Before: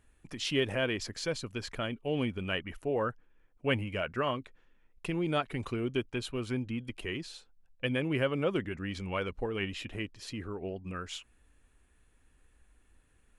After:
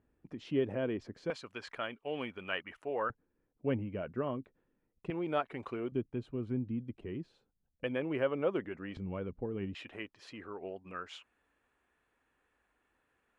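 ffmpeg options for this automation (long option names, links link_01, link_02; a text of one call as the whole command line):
ffmpeg -i in.wav -af "asetnsamples=nb_out_samples=441:pad=0,asendcmd='1.3 bandpass f 1200;3.1 bandpass f 250;5.1 bandpass f 750;5.92 bandpass f 190;7.84 bandpass f 650;8.97 bandpass f 190;9.75 bandpass f 970',bandpass=frequency=290:width_type=q:width=0.67:csg=0" out.wav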